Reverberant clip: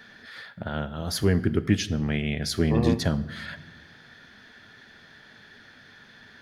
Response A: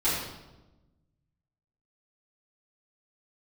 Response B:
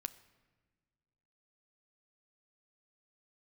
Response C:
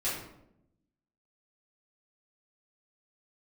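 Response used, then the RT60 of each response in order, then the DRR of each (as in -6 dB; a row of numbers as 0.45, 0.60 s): B; 1.1 s, not exponential, 0.80 s; -13.5, 11.5, -11.0 dB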